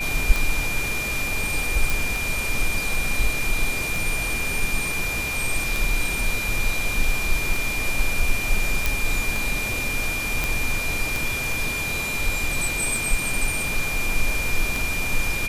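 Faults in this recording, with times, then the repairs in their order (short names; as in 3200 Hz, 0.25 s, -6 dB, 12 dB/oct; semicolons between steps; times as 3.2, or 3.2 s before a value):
tick 33 1/3 rpm
tone 2400 Hz -26 dBFS
1.9 pop
8.86 pop
10.44 pop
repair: de-click; notch 2400 Hz, Q 30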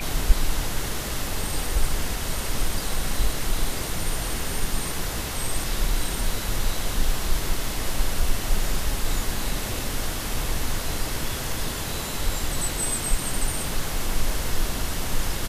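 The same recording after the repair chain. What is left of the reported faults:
none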